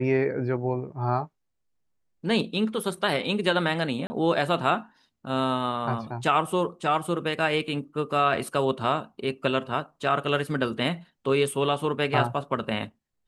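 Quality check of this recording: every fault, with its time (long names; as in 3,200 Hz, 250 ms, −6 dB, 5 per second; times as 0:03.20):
0:04.07–0:04.10: drop-out 30 ms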